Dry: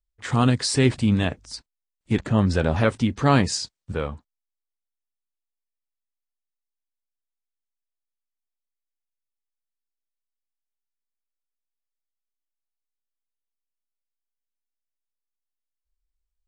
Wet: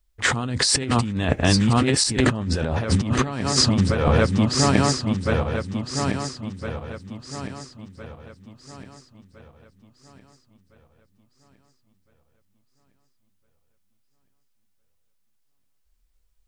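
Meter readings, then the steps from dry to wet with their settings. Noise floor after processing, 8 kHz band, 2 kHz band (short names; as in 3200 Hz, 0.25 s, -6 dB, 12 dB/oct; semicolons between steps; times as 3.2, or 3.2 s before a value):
-66 dBFS, +9.0 dB, +5.5 dB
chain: regenerating reverse delay 0.68 s, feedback 60%, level -8.5 dB; negative-ratio compressor -29 dBFS, ratio -1; gain +8 dB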